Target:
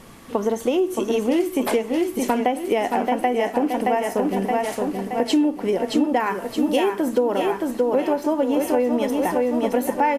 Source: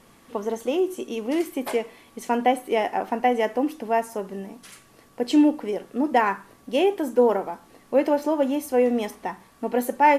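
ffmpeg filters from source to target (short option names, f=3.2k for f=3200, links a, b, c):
-filter_complex "[0:a]asettb=1/sr,asplit=3[a][b][c];[a]atrim=end=6.204[d];[b]atrim=start=6.2:end=6.93,asetpts=PTS-STARTPTS,afade=t=in:d=0.004:c=qsin,afade=t=out:st=0.726:d=0.004:c=qsin,highshelf=f=7.5k:g=11[e];[c]atrim=start=6.926[f];[d][e]acrossfade=d=0.004:c1=hsin:c2=qsin[g];[g][f]acrossfade=d=0.004:c1=qsin:c2=hsin,aecho=1:1:622|1244|1866|2488|3110|3732:0.501|0.246|0.12|0.059|0.0289|0.0142,acompressor=threshold=-26dB:ratio=6,lowshelf=f=200:g=4.5,volume=8dB"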